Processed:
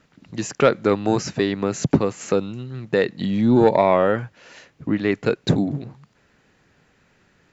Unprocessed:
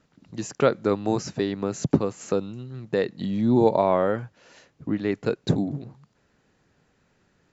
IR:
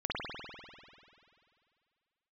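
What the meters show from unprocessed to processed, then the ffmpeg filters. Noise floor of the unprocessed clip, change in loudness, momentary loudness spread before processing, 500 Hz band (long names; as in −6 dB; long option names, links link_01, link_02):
−67 dBFS, +4.0 dB, 16 LU, +4.0 dB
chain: -af "acontrast=69,equalizer=frequency=2200:width_type=o:width=1.4:gain=5,volume=-2dB"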